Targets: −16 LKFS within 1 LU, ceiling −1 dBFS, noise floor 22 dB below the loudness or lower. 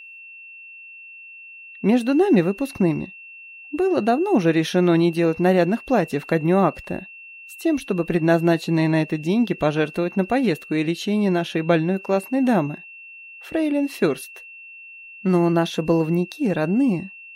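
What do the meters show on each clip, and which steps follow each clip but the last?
interfering tone 2,700 Hz; level of the tone −39 dBFS; integrated loudness −21.0 LKFS; sample peak −5.0 dBFS; target loudness −16.0 LKFS
→ notch filter 2,700 Hz, Q 30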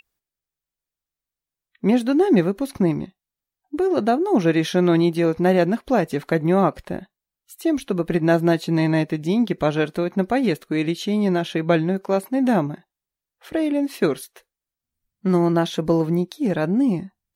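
interfering tone none found; integrated loudness −21.0 LKFS; sample peak −5.0 dBFS; target loudness −16.0 LKFS
→ level +5 dB
brickwall limiter −1 dBFS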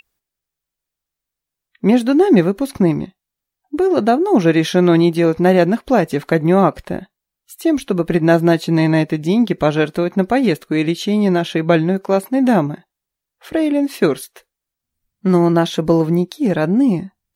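integrated loudness −16.0 LKFS; sample peak −1.0 dBFS; background noise floor −84 dBFS

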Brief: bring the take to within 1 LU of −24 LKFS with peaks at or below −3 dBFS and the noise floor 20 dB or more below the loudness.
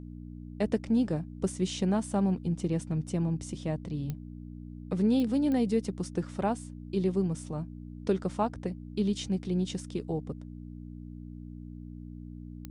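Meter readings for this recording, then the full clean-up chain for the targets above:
number of clicks 4; mains hum 60 Hz; hum harmonics up to 300 Hz; level of the hum −41 dBFS; integrated loudness −31.0 LKFS; sample peak −14.5 dBFS; target loudness −24.0 LKFS
→ click removal
hum removal 60 Hz, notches 5
level +7 dB

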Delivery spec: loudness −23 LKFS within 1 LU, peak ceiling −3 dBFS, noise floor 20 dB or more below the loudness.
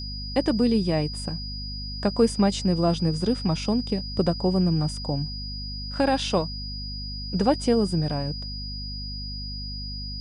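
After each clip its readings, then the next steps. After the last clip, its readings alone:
mains hum 50 Hz; hum harmonics up to 250 Hz; level of the hum −32 dBFS; interfering tone 4,900 Hz; level of the tone −35 dBFS; integrated loudness −26.0 LKFS; sample peak −8.5 dBFS; target loudness −23.0 LKFS
→ hum removal 50 Hz, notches 5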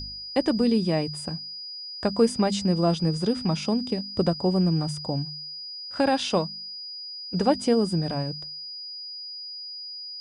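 mains hum none found; interfering tone 4,900 Hz; level of the tone −35 dBFS
→ notch filter 4,900 Hz, Q 30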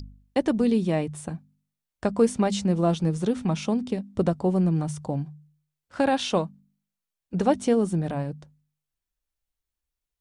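interfering tone none found; integrated loudness −25.5 LKFS; sample peak −9.0 dBFS; target loudness −23.0 LKFS
→ level +2.5 dB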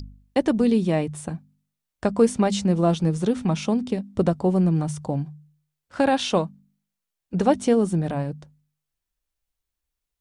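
integrated loudness −23.0 LKFS; sample peak −6.5 dBFS; background noise floor −84 dBFS

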